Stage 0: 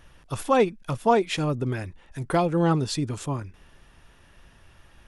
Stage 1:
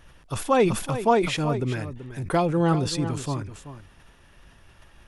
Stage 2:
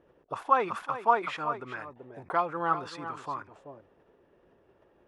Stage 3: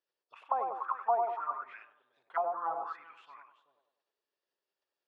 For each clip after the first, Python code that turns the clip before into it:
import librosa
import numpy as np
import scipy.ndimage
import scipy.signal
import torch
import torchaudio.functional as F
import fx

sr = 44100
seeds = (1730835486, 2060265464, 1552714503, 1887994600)

y1 = x + 10.0 ** (-12.5 / 20.0) * np.pad(x, (int(382 * sr / 1000.0), 0))[:len(x)]
y1 = fx.sustainer(y1, sr, db_per_s=80.0)
y2 = fx.auto_wah(y1, sr, base_hz=400.0, top_hz=1200.0, q=2.7, full_db=-24.5, direction='up')
y2 = F.gain(torch.from_numpy(y2), 4.5).numpy()
y3 = fx.echo_wet_bandpass(y2, sr, ms=98, feedback_pct=49, hz=640.0, wet_db=-3)
y3 = fx.auto_wah(y3, sr, base_hz=710.0, top_hz=4900.0, q=5.1, full_db=-23.0, direction='down')